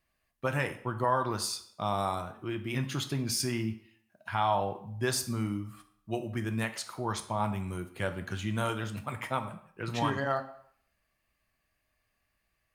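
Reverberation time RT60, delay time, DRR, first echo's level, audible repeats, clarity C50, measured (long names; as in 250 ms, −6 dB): 0.65 s, no echo audible, 7.0 dB, no echo audible, no echo audible, 12.5 dB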